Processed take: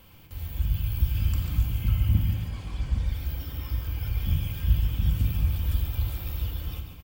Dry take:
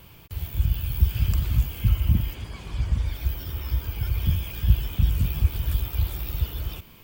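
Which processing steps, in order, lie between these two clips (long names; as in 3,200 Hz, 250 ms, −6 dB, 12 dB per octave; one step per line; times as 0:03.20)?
on a send: single-tap delay 142 ms −8.5 dB
on the sum: rectangular room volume 2,400 cubic metres, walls furnished, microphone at 2.1 metres
level −5.5 dB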